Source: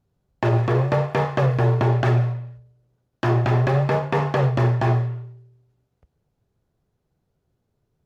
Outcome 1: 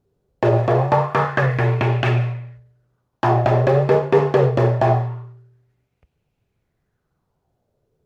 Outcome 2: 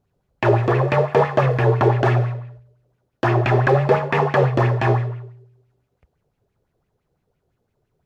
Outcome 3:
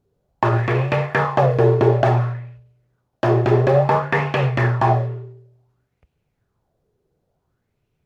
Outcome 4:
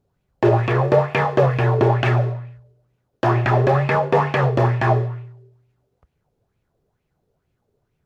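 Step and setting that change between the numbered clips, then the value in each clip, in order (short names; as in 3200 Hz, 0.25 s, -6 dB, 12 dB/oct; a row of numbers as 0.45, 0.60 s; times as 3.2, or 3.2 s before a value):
LFO bell, rate: 0.24, 5.9, 0.57, 2.2 Hz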